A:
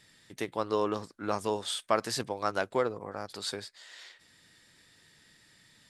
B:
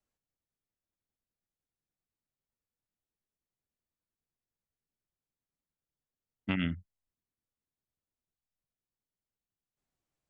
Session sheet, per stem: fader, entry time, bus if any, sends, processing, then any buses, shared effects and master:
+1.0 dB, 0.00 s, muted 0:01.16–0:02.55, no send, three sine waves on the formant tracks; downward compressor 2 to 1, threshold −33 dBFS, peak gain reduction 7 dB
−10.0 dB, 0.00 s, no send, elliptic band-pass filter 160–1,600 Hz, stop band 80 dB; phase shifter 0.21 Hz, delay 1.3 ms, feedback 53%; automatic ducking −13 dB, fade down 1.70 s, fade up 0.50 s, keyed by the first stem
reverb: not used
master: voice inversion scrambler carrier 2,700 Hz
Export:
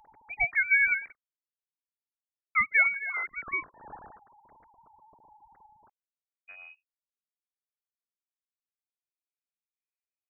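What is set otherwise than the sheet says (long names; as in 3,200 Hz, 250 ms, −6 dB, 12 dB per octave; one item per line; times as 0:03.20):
stem A +1.0 dB → +9.5 dB
stem B −10.0 dB → −16.5 dB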